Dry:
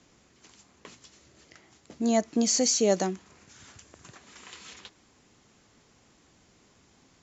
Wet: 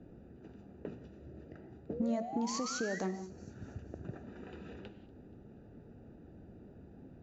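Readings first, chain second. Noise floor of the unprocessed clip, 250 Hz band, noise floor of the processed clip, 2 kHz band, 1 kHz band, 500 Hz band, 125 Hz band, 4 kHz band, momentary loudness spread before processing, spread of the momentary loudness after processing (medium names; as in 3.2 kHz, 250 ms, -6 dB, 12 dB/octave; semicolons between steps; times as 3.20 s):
-62 dBFS, -7.5 dB, -56 dBFS, -2.5 dB, -6.5 dB, -11.0 dB, -2.5 dB, -14.0 dB, 21 LU, 20 LU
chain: local Wiener filter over 41 samples; treble shelf 4.1 kHz -12 dB; peak limiter -23.5 dBFS, peak gain reduction 11.5 dB; compression 10:1, threshold -44 dBFS, peak gain reduction 17 dB; painted sound rise, 1.89–2.99 s, 430–2000 Hz -54 dBFS; distance through air 59 m; feedback echo behind a high-pass 239 ms, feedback 51%, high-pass 5.1 kHz, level -14.5 dB; gated-style reverb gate 220 ms flat, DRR 10 dB; trim +11 dB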